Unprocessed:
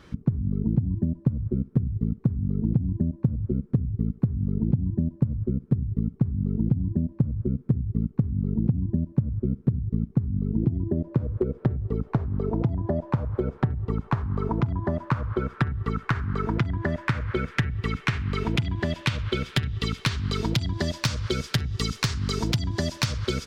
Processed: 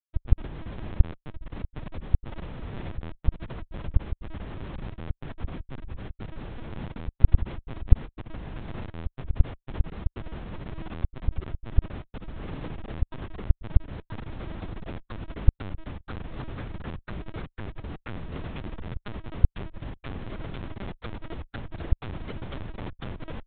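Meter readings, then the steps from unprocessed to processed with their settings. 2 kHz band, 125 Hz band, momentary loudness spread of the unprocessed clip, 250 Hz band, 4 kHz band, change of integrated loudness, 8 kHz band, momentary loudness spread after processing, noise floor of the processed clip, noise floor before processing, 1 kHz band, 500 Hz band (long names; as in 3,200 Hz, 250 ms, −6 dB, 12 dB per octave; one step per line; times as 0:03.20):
−11.0 dB, −7.5 dB, 3 LU, −13.0 dB, −15.5 dB, −7.0 dB, can't be measured, 13 LU, −74 dBFS, −49 dBFS, −8.5 dB, −10.0 dB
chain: harmonic and percussive parts rebalanced percussive −5 dB
parametric band 1,500 Hz +6.5 dB 0.4 octaves
comparator with hysteresis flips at −25.5 dBFS
linear-prediction vocoder at 8 kHz pitch kept
level −6.5 dB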